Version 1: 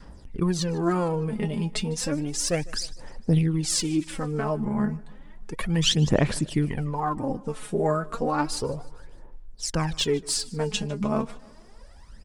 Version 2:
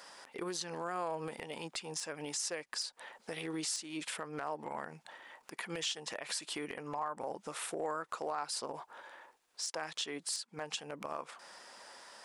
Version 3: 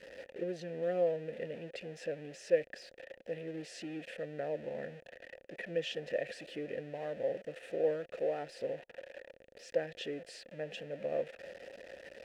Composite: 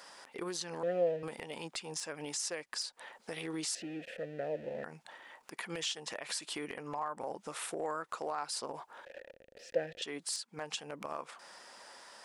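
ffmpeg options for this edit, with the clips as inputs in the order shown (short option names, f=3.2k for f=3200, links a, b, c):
-filter_complex "[2:a]asplit=3[a][b][c];[1:a]asplit=4[d][e][f][g];[d]atrim=end=0.832[h];[a]atrim=start=0.828:end=1.232[i];[e]atrim=start=1.228:end=3.752[j];[b]atrim=start=3.748:end=4.842[k];[f]atrim=start=4.838:end=9.052[l];[c]atrim=start=9.048:end=10.022[m];[g]atrim=start=10.018[n];[h][i]acrossfade=d=0.004:c1=hsin:c2=hsin[o];[o][j]acrossfade=d=0.004:c1=hsin:c2=hsin[p];[p][k]acrossfade=d=0.004:c1=hsin:c2=hsin[q];[q][l]acrossfade=d=0.004:c1=hsin:c2=hsin[r];[r][m]acrossfade=d=0.004:c1=hsin:c2=hsin[s];[s][n]acrossfade=d=0.004:c1=hsin:c2=hsin"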